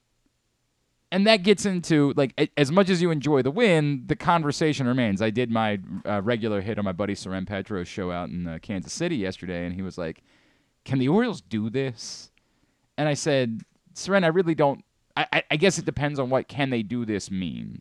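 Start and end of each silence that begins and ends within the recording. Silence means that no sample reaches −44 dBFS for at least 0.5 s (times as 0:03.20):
0:10.19–0:10.86
0:12.38–0:12.98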